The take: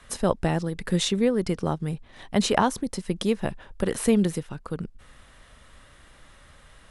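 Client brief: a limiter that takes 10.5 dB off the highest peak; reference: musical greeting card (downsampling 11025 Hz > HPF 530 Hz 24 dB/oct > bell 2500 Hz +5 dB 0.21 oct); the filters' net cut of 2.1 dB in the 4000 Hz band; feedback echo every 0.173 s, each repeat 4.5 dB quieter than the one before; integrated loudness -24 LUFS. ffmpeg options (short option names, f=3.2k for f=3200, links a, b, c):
-af "equalizer=f=4k:t=o:g=-3,alimiter=limit=-15.5dB:level=0:latency=1,aecho=1:1:173|346|519|692|865|1038|1211|1384|1557:0.596|0.357|0.214|0.129|0.0772|0.0463|0.0278|0.0167|0.01,aresample=11025,aresample=44100,highpass=f=530:w=0.5412,highpass=f=530:w=1.3066,equalizer=f=2.5k:t=o:w=0.21:g=5,volume=9.5dB"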